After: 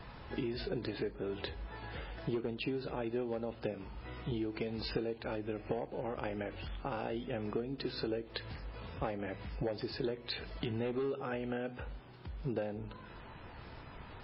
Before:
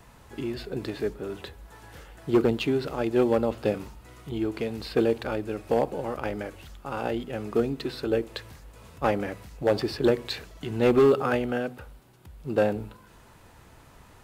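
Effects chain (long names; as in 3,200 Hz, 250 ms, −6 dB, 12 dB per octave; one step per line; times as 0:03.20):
downward compressor 12 to 1, threshold −36 dBFS, peak gain reduction 20 dB
dynamic equaliser 1,200 Hz, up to −4 dB, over −60 dBFS, Q 3.3
level +3 dB
MP3 16 kbit/s 12,000 Hz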